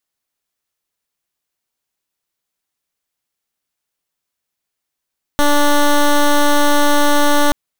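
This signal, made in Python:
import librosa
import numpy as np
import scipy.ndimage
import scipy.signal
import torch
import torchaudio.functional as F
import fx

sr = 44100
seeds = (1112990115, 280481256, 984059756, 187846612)

y = fx.pulse(sr, length_s=2.13, hz=291.0, level_db=-11.0, duty_pct=12)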